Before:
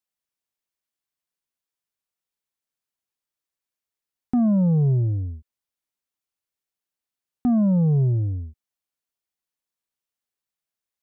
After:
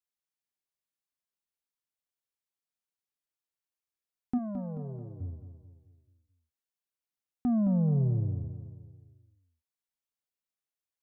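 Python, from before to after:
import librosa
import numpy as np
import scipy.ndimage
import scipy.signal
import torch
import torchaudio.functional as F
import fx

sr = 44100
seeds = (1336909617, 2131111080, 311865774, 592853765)

p1 = fx.highpass(x, sr, hz=680.0, slope=6, at=(4.37, 5.2), fade=0.02)
p2 = p1 + fx.echo_feedback(p1, sr, ms=217, feedback_pct=46, wet_db=-10, dry=0)
y = F.gain(torch.from_numpy(p2), -7.5).numpy()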